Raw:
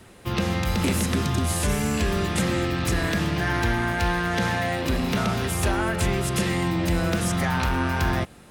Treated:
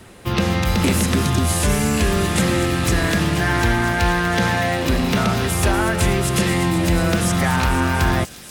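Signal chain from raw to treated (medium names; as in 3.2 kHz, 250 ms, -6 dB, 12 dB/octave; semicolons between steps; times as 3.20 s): feedback echo behind a high-pass 243 ms, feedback 83%, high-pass 4.7 kHz, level -10 dB; trim +5.5 dB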